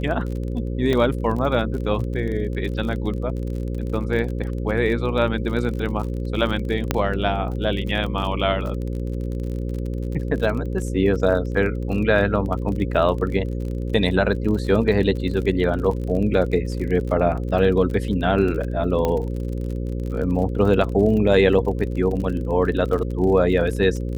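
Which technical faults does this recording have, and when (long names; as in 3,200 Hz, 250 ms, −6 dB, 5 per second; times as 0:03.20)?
mains buzz 60 Hz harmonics 9 −26 dBFS
surface crackle 37 per second −29 dBFS
0:00.93: drop-out 2.3 ms
0:06.91: click −4 dBFS
0:19.05: click −10 dBFS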